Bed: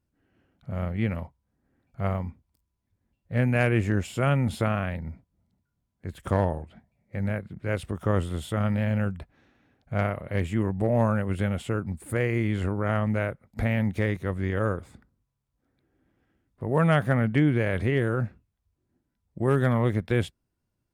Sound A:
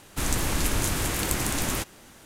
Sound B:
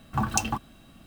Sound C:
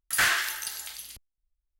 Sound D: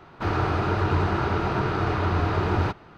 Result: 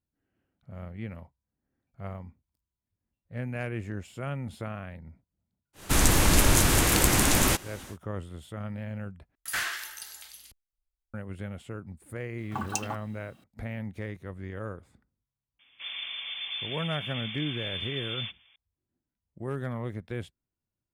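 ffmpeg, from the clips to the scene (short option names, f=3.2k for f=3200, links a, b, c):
-filter_complex "[0:a]volume=-11dB[a];[1:a]acontrast=41[b];[2:a]highpass=180[c];[4:a]lowpass=f=3.1k:t=q:w=0.5098,lowpass=f=3.1k:t=q:w=0.6013,lowpass=f=3.1k:t=q:w=0.9,lowpass=f=3.1k:t=q:w=2.563,afreqshift=-3600[d];[a]asplit=2[e][f];[e]atrim=end=9.354[g];[3:a]atrim=end=1.79,asetpts=PTS-STARTPTS,volume=-7.5dB[h];[f]atrim=start=11.136[i];[b]atrim=end=2.25,asetpts=PTS-STARTPTS,volume=-0.5dB,afade=t=in:d=0.1,afade=t=out:st=2.15:d=0.1,adelay=252693S[j];[c]atrim=end=1.06,asetpts=PTS-STARTPTS,volume=-6dB,afade=t=in:d=0.004:c=hsin,afade=t=out:st=1.056:d=0.004:c=hsin,adelay=12380[k];[d]atrim=end=2.97,asetpts=PTS-STARTPTS,volume=-13.5dB,afade=t=in:d=0.004:c=hsin,afade=t=out:st=2.966:d=0.004:c=hsin,adelay=15590[l];[g][h]acrossfade=d=0.004:c1=hsin:c2=hsin[m];[m][i]acrossfade=d=0.004:c1=hsin:c2=hsin[n];[n][j][k][l]amix=inputs=4:normalize=0"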